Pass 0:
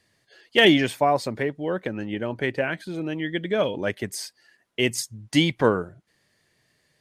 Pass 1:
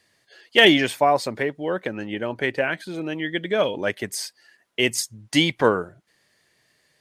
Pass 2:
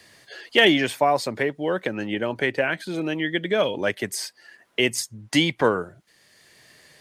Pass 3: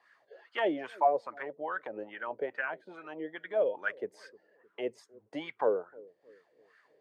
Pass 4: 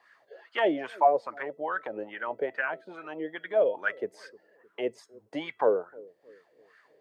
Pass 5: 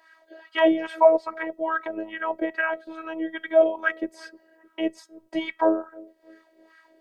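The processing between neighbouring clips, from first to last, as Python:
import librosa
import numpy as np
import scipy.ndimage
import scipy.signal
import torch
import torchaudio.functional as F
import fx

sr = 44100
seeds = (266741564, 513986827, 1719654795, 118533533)

y1 = fx.low_shelf(x, sr, hz=270.0, db=-8.0)
y1 = F.gain(torch.from_numpy(y1), 3.5).numpy()
y2 = fx.band_squash(y1, sr, depth_pct=40)
y3 = fx.wah_lfo(y2, sr, hz=2.4, low_hz=460.0, high_hz=1500.0, q=5.1)
y3 = fx.echo_bbd(y3, sr, ms=307, stages=1024, feedback_pct=46, wet_db=-20.5)
y4 = fx.comb_fb(y3, sr, f0_hz=660.0, decay_s=0.37, harmonics='all', damping=0.0, mix_pct=40)
y4 = F.gain(torch.from_numpy(y4), 8.5).numpy()
y5 = fx.robotise(y4, sr, hz=322.0)
y5 = F.gain(torch.from_numpy(y5), 7.5).numpy()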